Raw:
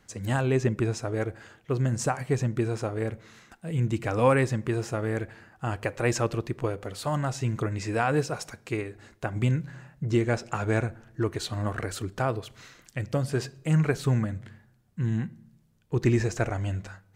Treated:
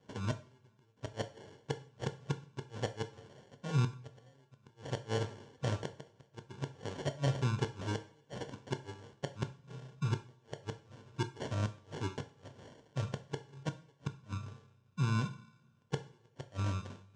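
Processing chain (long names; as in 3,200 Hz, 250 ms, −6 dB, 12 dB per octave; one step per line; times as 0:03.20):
flanger 1.1 Hz, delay 9.7 ms, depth 1.4 ms, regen +82%
gate with flip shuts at −23 dBFS, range −40 dB
decimation without filtering 35×
loudspeaker in its box 120–6,800 Hz, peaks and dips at 130 Hz +4 dB, 220 Hz −5 dB, 320 Hz −6 dB, 730 Hz −7 dB, 2,000 Hz −8 dB, 4,400 Hz −5 dB
coupled-rooms reverb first 0.39 s, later 2 s, from −26 dB, DRR 7.5 dB
level +3 dB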